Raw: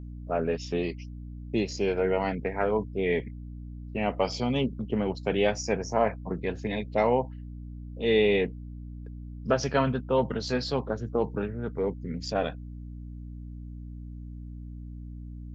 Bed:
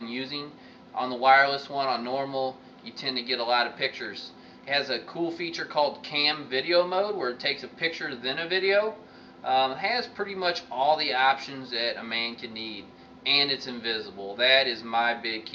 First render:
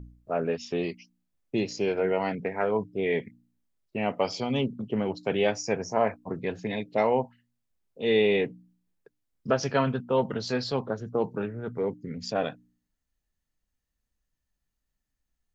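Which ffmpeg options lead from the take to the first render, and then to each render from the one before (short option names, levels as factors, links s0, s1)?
-af "bandreject=f=60:t=h:w=4,bandreject=f=120:t=h:w=4,bandreject=f=180:t=h:w=4,bandreject=f=240:t=h:w=4,bandreject=f=300:t=h:w=4"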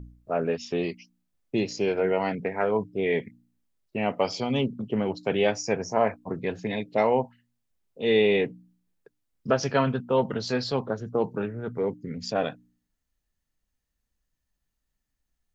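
-af "volume=1.19"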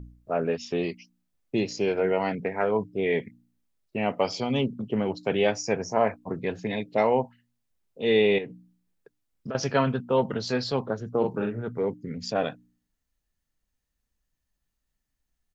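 -filter_complex "[0:a]asettb=1/sr,asplit=3[s0][s1][s2];[s0]atrim=end=8.384[s3];[s1]atrim=start=8.38:end=9.55,asetpts=PTS-STARTPTS,afade=t=in:d=0.004:c=qsin,afade=t=out:st=1.166:d=0.004:c=qsin,acompressor=threshold=0.0282:ratio=6:attack=3.2:release=140:knee=1:detection=peak[s4];[s2]atrim=start=9.546[s5];[s3][s4]acrossfade=d=0.004:c1=hsin:c2=qsin[s6];[s6][s5]acrossfade=d=0.004:c1=qsin:c2=hsin,asplit=3[s7][s8][s9];[s7]afade=t=out:st=11.21:d=0.02[s10];[s8]asplit=2[s11][s12];[s12]adelay=43,volume=0.631[s13];[s11][s13]amix=inputs=2:normalize=0,afade=t=in:st=11.21:d=0.02,afade=t=out:st=11.61:d=0.02[s14];[s9]afade=t=in:st=11.61:d=0.02[s15];[s10][s14][s15]amix=inputs=3:normalize=0"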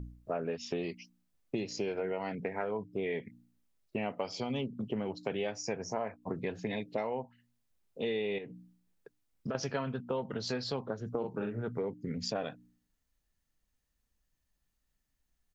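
-af "acompressor=threshold=0.0251:ratio=6"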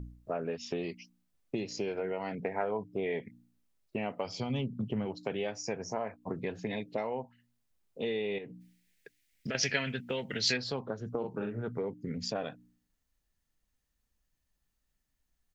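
-filter_complex "[0:a]asettb=1/sr,asplit=3[s0][s1][s2];[s0]atrim=end=2.324[s3];[s1]atrim=start=2.32:end=3.29,asetpts=PTS-STARTPTS,afade=t=in:d=0.004:c=qsin,afade=t=out:st=0.966:d=0.004:c=qsin,equalizer=f=740:w=1.5:g=5[s4];[s2]atrim=start=3.286[s5];[s3][s4]acrossfade=d=0.004:c1=hsin:c2=qsin[s6];[s6][s5]acrossfade=d=0.004:c1=qsin:c2=hsin,asplit=3[s7][s8][s9];[s7]afade=t=out:st=4.25:d=0.02[s10];[s8]asubboost=boost=2.5:cutoff=200,afade=t=in:st=4.25:d=0.02,afade=t=out:st=5.05:d=0.02[s11];[s9]afade=t=in:st=5.05:d=0.02[s12];[s10][s11][s12]amix=inputs=3:normalize=0,asplit=3[s13][s14][s15];[s13]afade=t=out:st=8.6:d=0.02[s16];[s14]highshelf=f=1500:t=q:w=3:g=10,afade=t=in:st=8.6:d=0.02,afade=t=out:st=10.56:d=0.02[s17];[s15]afade=t=in:st=10.56:d=0.02[s18];[s16][s17][s18]amix=inputs=3:normalize=0"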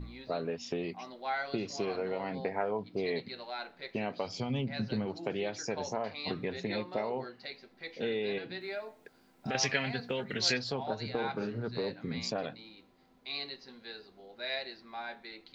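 -filter_complex "[1:a]volume=0.15[s0];[0:a][s0]amix=inputs=2:normalize=0"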